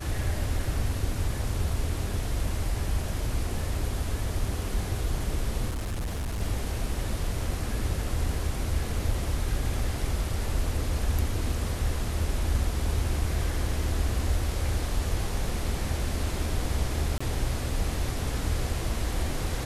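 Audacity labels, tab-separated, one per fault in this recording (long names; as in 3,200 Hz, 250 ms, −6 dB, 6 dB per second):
5.690000	6.420000	clipping −27.5 dBFS
17.180000	17.200000	drop-out 25 ms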